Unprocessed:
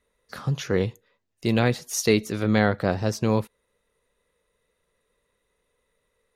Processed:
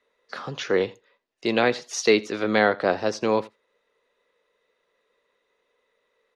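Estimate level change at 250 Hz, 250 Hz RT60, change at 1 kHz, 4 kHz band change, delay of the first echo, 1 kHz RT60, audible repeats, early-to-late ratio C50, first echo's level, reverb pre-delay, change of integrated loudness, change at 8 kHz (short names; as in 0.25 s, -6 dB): -3.0 dB, none, +4.0 dB, +2.5 dB, 84 ms, none, 1, none, -22.5 dB, none, +1.0 dB, -3.0 dB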